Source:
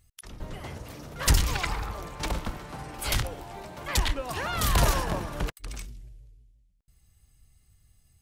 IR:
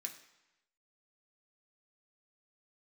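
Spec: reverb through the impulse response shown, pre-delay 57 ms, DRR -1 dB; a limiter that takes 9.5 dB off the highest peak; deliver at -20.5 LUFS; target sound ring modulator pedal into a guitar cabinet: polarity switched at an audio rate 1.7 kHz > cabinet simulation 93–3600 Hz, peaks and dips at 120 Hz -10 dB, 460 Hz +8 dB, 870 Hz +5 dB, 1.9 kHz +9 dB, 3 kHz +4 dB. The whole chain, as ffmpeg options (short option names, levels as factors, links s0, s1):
-filter_complex "[0:a]alimiter=limit=0.112:level=0:latency=1,asplit=2[s0][s1];[1:a]atrim=start_sample=2205,adelay=57[s2];[s1][s2]afir=irnorm=-1:irlink=0,volume=1.58[s3];[s0][s3]amix=inputs=2:normalize=0,aeval=exprs='val(0)*sgn(sin(2*PI*1700*n/s))':c=same,highpass=93,equalizer=f=120:t=q:w=4:g=-10,equalizer=f=460:t=q:w=4:g=8,equalizer=f=870:t=q:w=4:g=5,equalizer=f=1900:t=q:w=4:g=9,equalizer=f=3000:t=q:w=4:g=4,lowpass=f=3600:w=0.5412,lowpass=f=3600:w=1.3066,volume=1.68"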